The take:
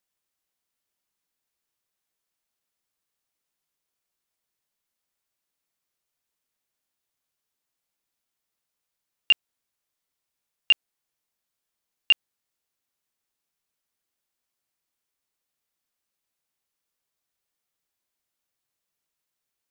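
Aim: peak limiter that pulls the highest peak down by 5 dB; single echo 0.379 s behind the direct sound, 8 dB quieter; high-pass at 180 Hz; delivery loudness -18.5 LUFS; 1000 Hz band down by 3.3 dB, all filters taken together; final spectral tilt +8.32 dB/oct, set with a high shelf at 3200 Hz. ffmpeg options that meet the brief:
-af "highpass=180,equalizer=f=1k:t=o:g=-5.5,highshelf=f=3.2k:g=8.5,alimiter=limit=-12dB:level=0:latency=1,aecho=1:1:379:0.398,volume=8.5dB"

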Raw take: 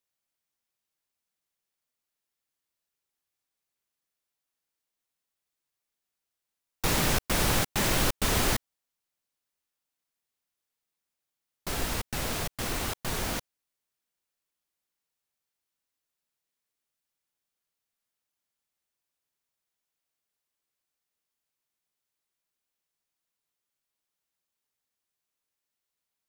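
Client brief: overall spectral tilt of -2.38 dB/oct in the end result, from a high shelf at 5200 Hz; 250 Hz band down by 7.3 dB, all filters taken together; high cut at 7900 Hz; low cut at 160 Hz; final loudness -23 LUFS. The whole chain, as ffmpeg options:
-af "highpass=160,lowpass=7.9k,equalizer=f=250:t=o:g=-9,highshelf=f=5.2k:g=7,volume=6dB"

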